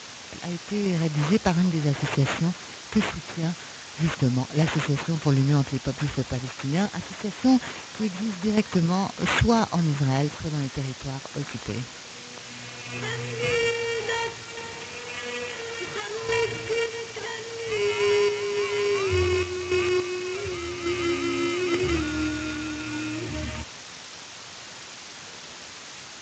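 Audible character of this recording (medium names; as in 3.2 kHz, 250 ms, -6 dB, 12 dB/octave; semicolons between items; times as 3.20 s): aliases and images of a low sample rate 5.1 kHz, jitter 0%; random-step tremolo, depth 70%; a quantiser's noise floor 6-bit, dither triangular; Speex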